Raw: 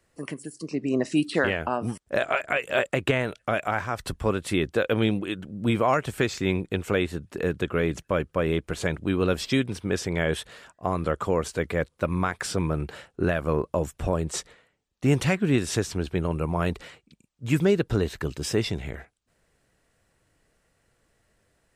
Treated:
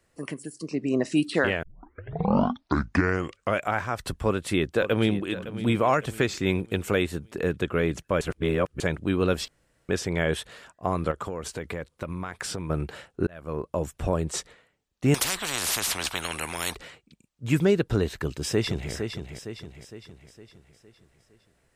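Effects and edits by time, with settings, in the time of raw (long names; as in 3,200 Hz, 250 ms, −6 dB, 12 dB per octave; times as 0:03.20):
0:01.63: tape start 2.03 s
0:04.22–0:05.32: delay throw 560 ms, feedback 40%, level −14 dB
0:06.46–0:07.31: high-shelf EQ 7,100 Hz +7.5 dB
0:08.21–0:08.80: reverse
0:09.48–0:09.89: fill with room tone
0:11.11–0:12.70: downward compressor, threshold −28 dBFS
0:13.27–0:14.19: fade in equal-power
0:15.14–0:16.75: every bin compressed towards the loudest bin 10 to 1
0:18.19–0:18.92: delay throw 460 ms, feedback 50%, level −7 dB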